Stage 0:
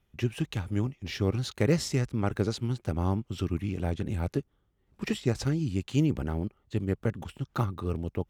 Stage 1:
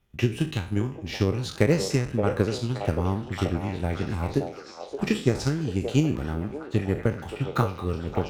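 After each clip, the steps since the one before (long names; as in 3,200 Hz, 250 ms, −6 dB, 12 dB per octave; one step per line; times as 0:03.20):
peak hold with a decay on every bin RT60 0.43 s
transient designer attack +6 dB, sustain 0 dB
echo through a band-pass that steps 572 ms, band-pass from 620 Hz, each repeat 0.7 octaves, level −1.5 dB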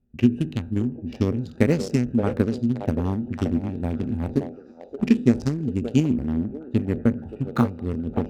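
adaptive Wiener filter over 41 samples
parametric band 240 Hz +15 dB 0.22 octaves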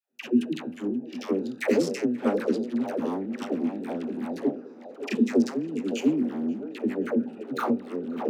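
high-pass filter 250 Hz 24 dB per octave
all-pass dispersion lows, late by 122 ms, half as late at 570 Hz
tape delay 531 ms, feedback 76%, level −22 dB, low-pass 3,700 Hz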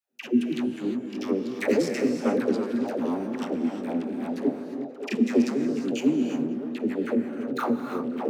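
reverb whose tail is shaped and stops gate 380 ms rising, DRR 6 dB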